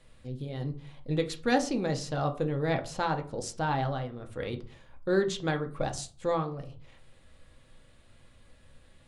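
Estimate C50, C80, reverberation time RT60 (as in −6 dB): 14.0 dB, 20.0 dB, 0.40 s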